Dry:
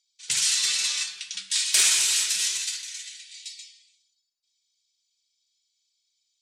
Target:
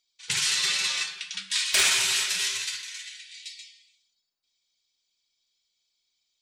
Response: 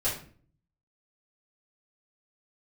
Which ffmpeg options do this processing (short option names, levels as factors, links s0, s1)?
-af "equalizer=f=8200:w=0.41:g=-13.5,volume=2.51"